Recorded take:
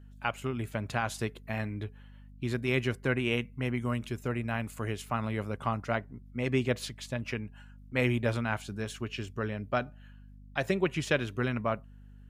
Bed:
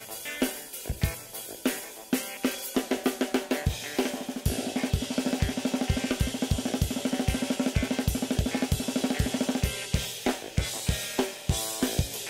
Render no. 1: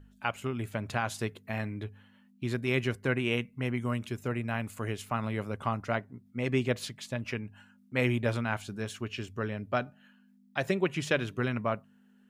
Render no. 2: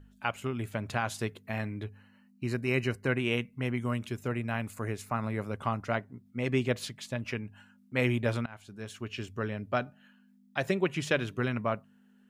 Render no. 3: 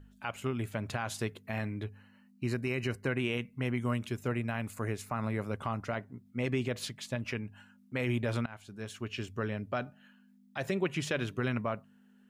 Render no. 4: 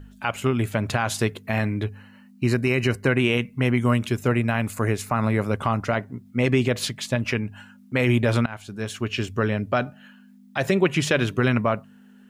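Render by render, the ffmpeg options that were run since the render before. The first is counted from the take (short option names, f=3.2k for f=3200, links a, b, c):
-af "bandreject=f=50:t=h:w=4,bandreject=f=100:t=h:w=4,bandreject=f=150:t=h:w=4"
-filter_complex "[0:a]asettb=1/sr,asplit=3[a][b][c];[a]atrim=end=1.864[d];[b]atrim=start=1.86:end=3.07,asetpts=PTS-STARTPTS,afade=t=in:d=0.004:c=qsin,afade=t=out:st=1.206:d=0.004:c=qsin,asuperstop=centerf=3400:order=12:qfactor=4.9[e];[c]atrim=start=3.066[f];[d][e]acrossfade=d=0.004:c1=hsin:c2=qsin[g];[g][f]acrossfade=d=0.004:c1=qsin:c2=hsin,asettb=1/sr,asplit=3[h][i][j];[h]atrim=end=4.734[k];[i]atrim=start=4.73:end=5.44,asetpts=PTS-STARTPTS,afade=t=in:d=0.004:c=qsin,afade=t=out:st=0.706:d=0.004:c=qsin,equalizer=f=3.1k:t=o:w=0.31:g=-13.5[l];[j]atrim=start=5.436[m];[k][l]acrossfade=d=0.004:c1=hsin:c2=qsin[n];[n][m]acrossfade=d=0.004:c1=qsin:c2=hsin,asplit=2[o][p];[o]atrim=end=8.46,asetpts=PTS-STARTPTS,afade=t=out:st=8.456:d=0.004:c=hsin:silence=0.0891251[q];[p]atrim=start=8.46,asetpts=PTS-STARTPTS,afade=t=in:d=0.77:silence=0.0891251[r];[q][r]concat=n=2:v=0:a=1"
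-af "alimiter=limit=-21dB:level=0:latency=1:release=62"
-af "volume=11.5dB"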